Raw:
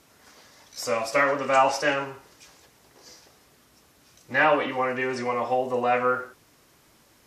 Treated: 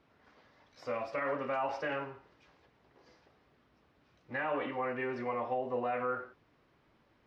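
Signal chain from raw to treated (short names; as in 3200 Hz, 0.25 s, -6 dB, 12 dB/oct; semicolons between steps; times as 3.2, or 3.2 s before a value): limiter -16.5 dBFS, peak gain reduction 8.5 dB; air absorption 330 m; gain -7 dB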